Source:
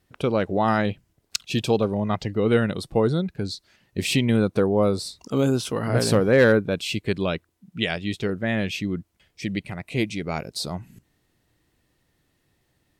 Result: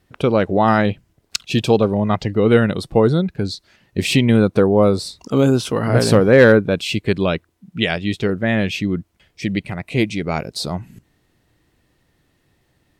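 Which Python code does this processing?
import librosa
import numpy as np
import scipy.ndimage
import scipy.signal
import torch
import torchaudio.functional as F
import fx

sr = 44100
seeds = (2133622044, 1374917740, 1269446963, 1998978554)

y = fx.high_shelf(x, sr, hz=4800.0, db=-5.0)
y = F.gain(torch.from_numpy(y), 6.5).numpy()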